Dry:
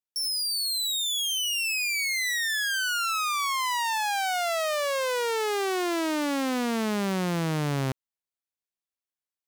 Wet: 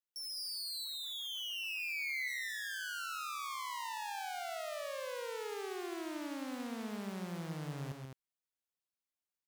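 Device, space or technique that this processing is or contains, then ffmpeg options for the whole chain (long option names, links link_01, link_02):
soft clipper into limiter: -filter_complex "[0:a]asoftclip=type=tanh:threshold=-26dB,alimiter=level_in=10.5dB:limit=-24dB:level=0:latency=1,volume=-10.5dB,asettb=1/sr,asplit=3[link_01][link_02][link_03];[link_01]atrim=end=0.844[link_04];[link_02]atrim=start=0.84:end=2.28,asetpts=PTS-STARTPTS,afade=type=in:duration=0.004:curve=qsin,afade=type=out:start_time=1.436:duration=0.004:curve=qsin,equalizer=frequency=250:width_type=o:width=1:gain=-6,equalizer=frequency=1000:width_type=o:width=1:gain=9,equalizer=frequency=2000:width_type=o:width=1:gain=4,equalizer=frequency=8000:width_type=o:width=1:gain=-11[link_05];[link_03]atrim=start=2.276[link_06];[link_04][link_05]acrossfade=duration=0.004:curve1=hsin:curve2=qsin[link_07];[link_07][link_06]acrossfade=duration=0.004:curve1=qsin:curve2=hsin,aecho=1:1:134.1|209.9:0.501|0.501,volume=-5.5dB"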